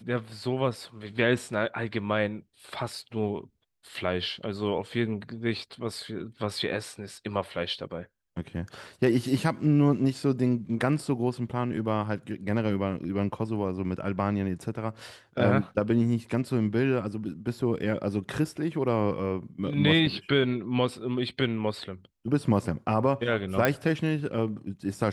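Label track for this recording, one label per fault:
23.650000	23.650000	pop -9 dBFS

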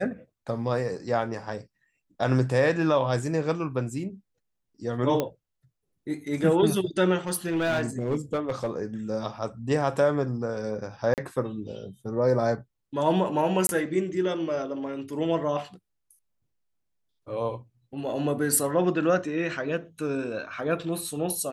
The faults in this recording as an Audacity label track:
5.200000	5.200000	pop -12 dBFS
7.270000	8.820000	clipped -21.5 dBFS
11.140000	11.180000	dropout 38 ms
13.670000	13.690000	dropout 21 ms

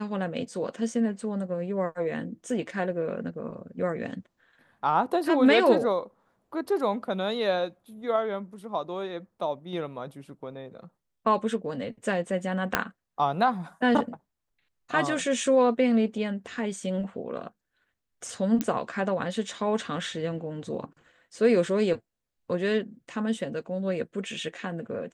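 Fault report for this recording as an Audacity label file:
12.750000	12.750000	pop -6 dBFS
18.610000	18.610000	pop -13 dBFS

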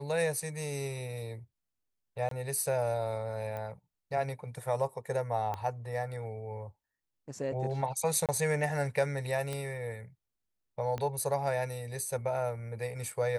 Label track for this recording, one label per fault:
2.290000	2.310000	dropout 23 ms
3.570000	3.570000	pop -27 dBFS
5.540000	5.540000	pop -23 dBFS
8.260000	8.290000	dropout 27 ms
9.530000	9.530000	pop -22 dBFS
10.980000	10.980000	pop -23 dBFS

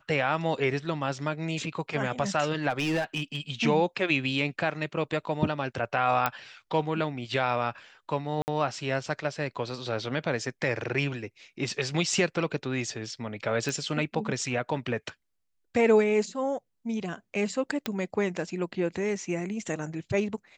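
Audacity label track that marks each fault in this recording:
2.690000	3.370000	clipped -23 dBFS
6.260000	6.260000	pop -10 dBFS
8.420000	8.480000	dropout 59 ms
13.690000	13.690000	pop
17.860000	17.860000	pop -14 dBFS

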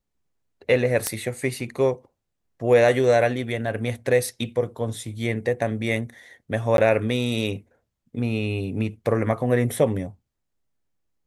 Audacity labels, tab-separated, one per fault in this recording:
1.070000	1.070000	pop -7 dBFS
6.770000	6.780000	dropout 12 ms

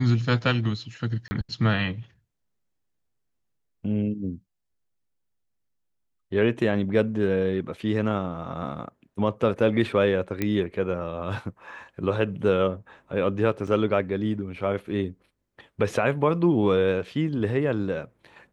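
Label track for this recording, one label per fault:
1.280000	1.310000	dropout 30 ms
10.420000	10.420000	pop -12 dBFS
13.670000	13.670000	dropout 4.4 ms

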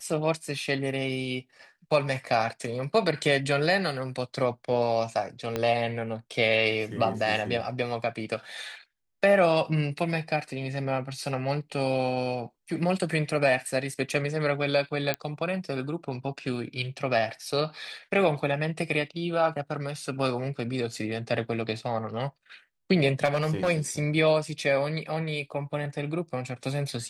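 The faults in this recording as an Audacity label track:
5.560000	5.560000	pop -14 dBFS
15.140000	15.140000	pop -11 dBFS
23.240000	23.700000	clipped -20 dBFS

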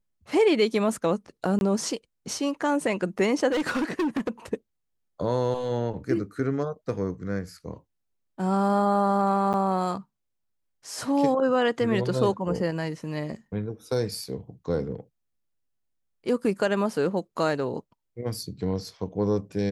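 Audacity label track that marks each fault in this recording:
1.590000	1.610000	dropout 21 ms
3.510000	4.290000	clipped -22.5 dBFS
9.530000	9.540000	dropout 9 ms

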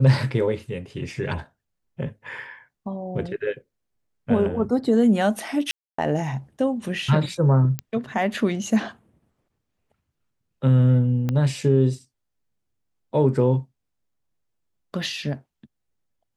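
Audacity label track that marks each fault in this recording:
5.710000	5.980000	dropout 274 ms
7.790000	7.790000	pop -12 dBFS
11.290000	11.290000	pop -13 dBFS

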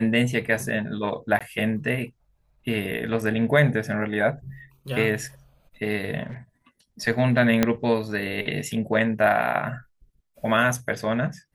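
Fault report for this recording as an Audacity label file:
1.390000	1.410000	dropout 16 ms
6.260000	6.370000	clipped -32 dBFS
7.630000	7.630000	pop -5 dBFS

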